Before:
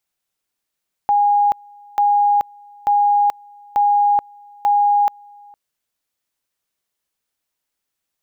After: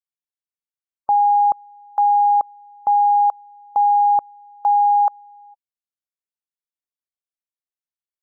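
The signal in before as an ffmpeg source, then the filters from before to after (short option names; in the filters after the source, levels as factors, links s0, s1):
-f lavfi -i "aevalsrc='pow(10,(-11.5-28.5*gte(mod(t,0.89),0.43))/20)*sin(2*PI*820*t)':d=4.45:s=44100"
-af "afftdn=nr=23:nf=-30"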